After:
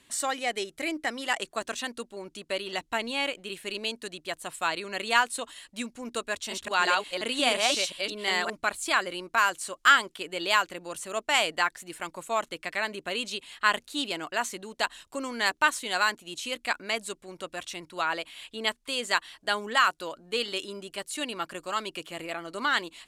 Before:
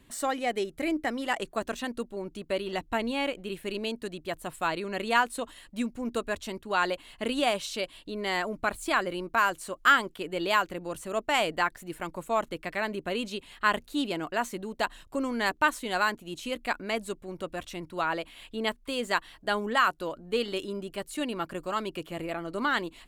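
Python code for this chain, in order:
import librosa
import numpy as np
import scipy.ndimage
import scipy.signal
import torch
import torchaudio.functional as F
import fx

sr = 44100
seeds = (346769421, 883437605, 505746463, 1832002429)

y = fx.reverse_delay(x, sr, ms=177, wet_db=-0.5, at=(6.33, 8.5))
y = scipy.signal.sosfilt(scipy.signal.butter(2, 8700.0, 'lowpass', fs=sr, output='sos'), y)
y = fx.tilt_eq(y, sr, slope=3.0)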